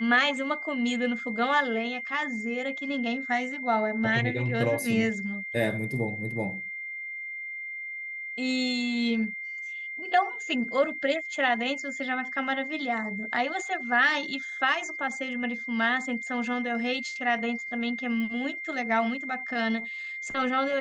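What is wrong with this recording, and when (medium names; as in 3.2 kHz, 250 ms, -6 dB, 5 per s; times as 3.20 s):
whine 2.1 kHz -34 dBFS
18.20 s: pop -23 dBFS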